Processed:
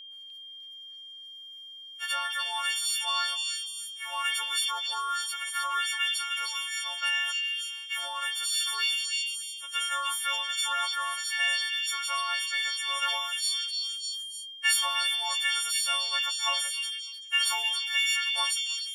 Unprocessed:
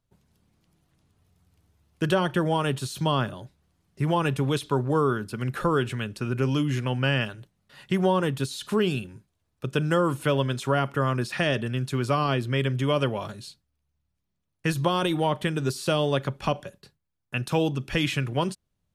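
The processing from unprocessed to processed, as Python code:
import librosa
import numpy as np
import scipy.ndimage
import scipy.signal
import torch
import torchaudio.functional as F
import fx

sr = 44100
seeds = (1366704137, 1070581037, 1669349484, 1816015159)

p1 = fx.freq_snap(x, sr, grid_st=4)
p2 = fx.high_shelf(p1, sr, hz=4000.0, db=-6.0)
p3 = fx.rider(p2, sr, range_db=10, speed_s=0.5)
p4 = scipy.signal.sosfilt(scipy.signal.bessel(6, 1500.0, 'highpass', norm='mag', fs=sr, output='sos'), p3)
p5 = p4 + 10.0 ** (-43.0 / 20.0) * np.sin(2.0 * np.pi * 3200.0 * np.arange(len(p4)) / sr)
p6 = p5 + fx.echo_stepped(p5, sr, ms=302, hz=3600.0, octaves=0.7, feedback_pct=70, wet_db=-1.0, dry=0)
y = fx.sustainer(p6, sr, db_per_s=33.0)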